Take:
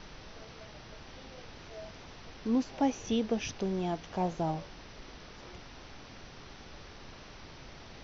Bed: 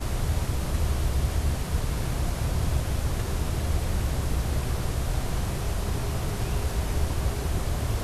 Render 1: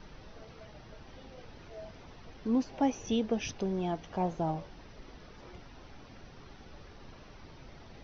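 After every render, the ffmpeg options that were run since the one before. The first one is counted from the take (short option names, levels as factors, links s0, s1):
-af "afftdn=nr=8:nf=-50"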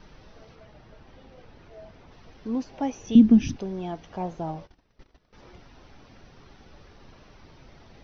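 -filter_complex "[0:a]asettb=1/sr,asplit=3[s0][s1][s2];[s0]atrim=end=0.554[s3];[s1]atrim=start=0.55:end=2.12,asetpts=PTS-STARTPTS,afade=t=in:d=0.004:c=qsin,afade=t=out:st=1.566:d=0.004:c=qsin,highshelf=f=4400:g=-8.5[s4];[s2]atrim=start=2.116[s5];[s3][s4]acrossfade=d=0.004:c1=hsin:c2=qsin[s6];[s6][s5]acrossfade=d=0.004:c1=qsin:c2=hsin,asettb=1/sr,asplit=3[s7][s8][s9];[s7]atrim=end=3.154[s10];[s8]atrim=start=3.15:end=3.56,asetpts=PTS-STARTPTS,afade=t=in:d=0.004:c=qsin,afade=t=out:st=0.406:d=0.004:c=qsin,lowshelf=f=370:t=q:w=3:g=12[s11];[s9]atrim=start=3.556[s12];[s10][s11]acrossfade=d=0.004:c1=hsin:c2=qsin[s13];[s13][s12]acrossfade=d=0.004:c1=qsin:c2=hsin,asettb=1/sr,asplit=3[s14][s15][s16];[s14]atrim=end=4.474[s17];[s15]atrim=start=4.47:end=5.33,asetpts=PTS-STARTPTS,afade=t=in:d=0.004:c=qsin,afade=t=out:st=0.856:d=0.004:c=qsin,agate=range=0.126:threshold=0.00398:ratio=16:release=100:detection=peak[s18];[s16]atrim=start=5.326[s19];[s17][s18]acrossfade=d=0.004:c1=hsin:c2=qsin[s20];[s20][s19]acrossfade=d=0.004:c1=qsin:c2=hsin"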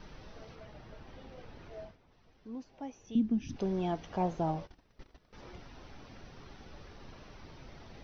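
-filter_complex "[0:a]asplit=3[s0][s1][s2];[s0]atrim=end=1.97,asetpts=PTS-STARTPTS,afade=t=out:st=1.81:d=0.16:silence=0.188365[s3];[s1]atrim=start=1.97:end=3.48,asetpts=PTS-STARTPTS,volume=0.188[s4];[s2]atrim=start=3.48,asetpts=PTS-STARTPTS,afade=t=in:d=0.16:silence=0.188365[s5];[s3][s4][s5]concat=n=3:v=0:a=1"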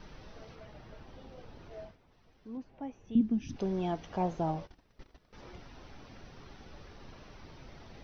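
-filter_complex "[0:a]asettb=1/sr,asplit=3[s0][s1][s2];[s0]atrim=end=1.054[s3];[s1]atrim=start=1.05:end=1.71,asetpts=PTS-STARTPTS,afade=t=in:d=0.004:c=qsin,afade=t=out:st=0.656:d=0.004:c=qsin,equalizer=f=2000:w=1.5:g=-4[s4];[s2]atrim=start=1.706[s5];[s3][s4]acrossfade=d=0.004:c1=hsin:c2=qsin[s6];[s6][s5]acrossfade=d=0.004:c1=qsin:c2=hsin,asettb=1/sr,asplit=3[s7][s8][s9];[s7]atrim=end=2.574[s10];[s8]atrim=start=2.57:end=3.21,asetpts=PTS-STARTPTS,afade=t=in:d=0.004:c=qsin,afade=t=out:st=0.636:d=0.004:c=qsin,bass=f=250:g=5,treble=f=4000:g=-14[s11];[s9]atrim=start=3.206[s12];[s10][s11]acrossfade=d=0.004:c1=hsin:c2=qsin[s13];[s13][s12]acrossfade=d=0.004:c1=qsin:c2=hsin"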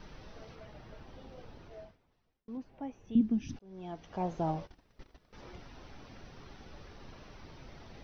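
-filter_complex "[0:a]asplit=3[s0][s1][s2];[s0]atrim=end=2.48,asetpts=PTS-STARTPTS,afade=t=out:st=1.48:d=1[s3];[s1]atrim=start=2.48:end=3.59,asetpts=PTS-STARTPTS,afade=t=in:d=0.004:c=hsin,afade=t=out:st=1.106:d=0.004:c=hsin[s4];[s2]atrim=start=3.59,asetpts=PTS-STARTPTS,afade=t=in:d=0.9[s5];[s3][s4][s5]concat=n=3:v=0:a=1"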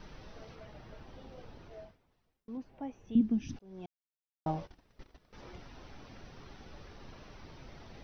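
-filter_complex "[0:a]asplit=3[s0][s1][s2];[s0]atrim=end=3.86,asetpts=PTS-STARTPTS,afade=t=out:st=3.856:d=0.004:c=hsin[s3];[s1]atrim=start=3.86:end=4.46,asetpts=PTS-STARTPTS,volume=0[s4];[s2]atrim=start=4.46,asetpts=PTS-STARTPTS,afade=t=in:d=0.004:c=hsin[s5];[s3][s4][s5]concat=n=3:v=0:a=1"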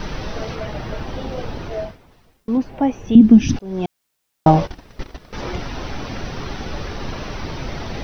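-af "acontrast=77,alimiter=level_in=6.31:limit=0.891:release=50:level=0:latency=1"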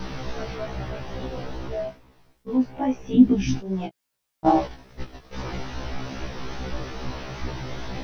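-af "flanger=delay=15.5:depth=7.7:speed=2.4,afftfilt=real='re*1.73*eq(mod(b,3),0)':imag='im*1.73*eq(mod(b,3),0)':win_size=2048:overlap=0.75"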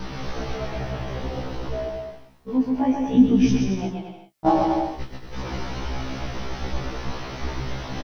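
-filter_complex "[0:a]asplit=2[s0][s1];[s1]adelay=30,volume=0.251[s2];[s0][s2]amix=inputs=2:normalize=0,aecho=1:1:130|227.5|300.6|355.5|396.6:0.631|0.398|0.251|0.158|0.1"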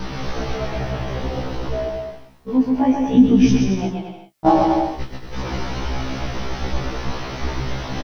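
-af "volume=1.68,alimiter=limit=0.708:level=0:latency=1"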